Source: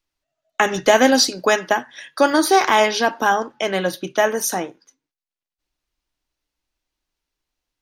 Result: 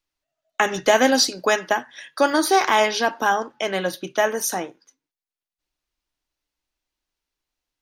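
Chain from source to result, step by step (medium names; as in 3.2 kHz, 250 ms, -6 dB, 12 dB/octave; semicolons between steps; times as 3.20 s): bass shelf 340 Hz -3 dB; trim -2 dB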